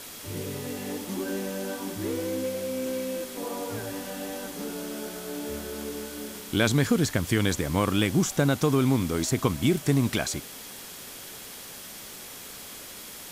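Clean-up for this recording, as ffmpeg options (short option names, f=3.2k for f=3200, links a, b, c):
-af "bandreject=f=3.3k:w=30,afwtdn=0.0089"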